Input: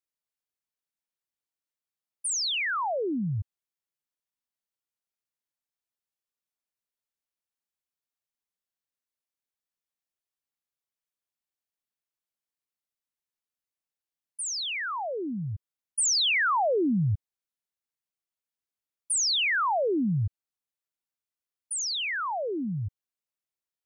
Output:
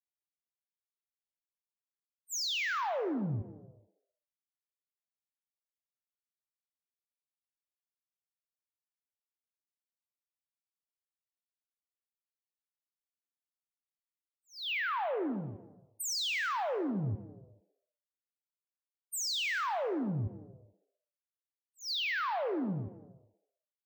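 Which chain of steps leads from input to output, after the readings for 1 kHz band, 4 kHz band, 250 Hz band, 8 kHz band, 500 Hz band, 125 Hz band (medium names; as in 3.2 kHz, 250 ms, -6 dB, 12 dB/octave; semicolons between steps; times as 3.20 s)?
-6.0 dB, -7.5 dB, -6.0 dB, -11.5 dB, -6.0 dB, -7.5 dB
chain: high-pass 170 Hz 6 dB/octave; level-controlled noise filter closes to 2.7 kHz, open at -24 dBFS; expander -28 dBFS; level-controlled noise filter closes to 1.4 kHz, open at -24 dBFS; compressor with a negative ratio -29 dBFS, ratio -0.5; peak limiter -33.5 dBFS, peak gain reduction 10 dB; frequency-shifting echo 86 ms, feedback 53%, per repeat +97 Hz, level -16.5 dB; gated-style reverb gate 470 ms falling, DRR 10.5 dB; decimation joined by straight lines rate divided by 2×; trim +3 dB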